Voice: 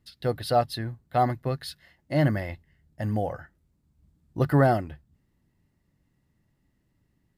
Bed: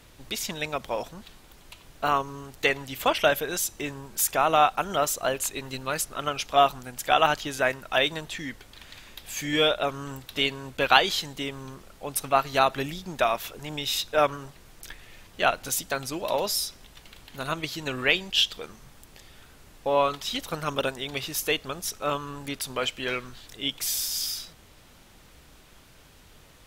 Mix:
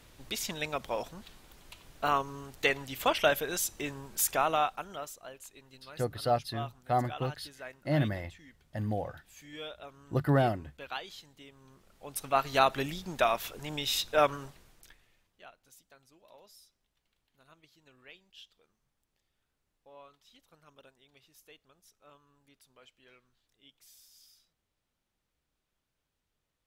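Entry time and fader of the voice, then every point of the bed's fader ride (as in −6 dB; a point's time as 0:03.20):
5.75 s, −5.5 dB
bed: 0:04.36 −4 dB
0:05.25 −20.5 dB
0:11.52 −20.5 dB
0:12.48 −3 dB
0:14.44 −3 dB
0:15.49 −30.5 dB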